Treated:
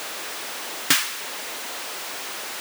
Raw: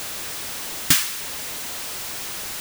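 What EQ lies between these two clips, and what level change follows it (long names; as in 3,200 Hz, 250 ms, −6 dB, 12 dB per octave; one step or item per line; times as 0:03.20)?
high-pass filter 340 Hz 12 dB per octave
high-shelf EQ 4,400 Hz −9 dB
+4.0 dB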